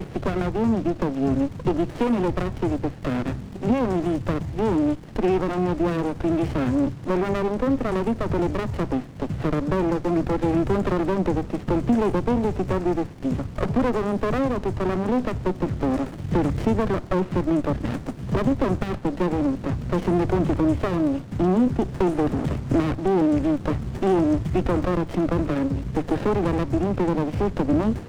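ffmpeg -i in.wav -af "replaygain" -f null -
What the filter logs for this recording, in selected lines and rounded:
track_gain = +4.7 dB
track_peak = 0.254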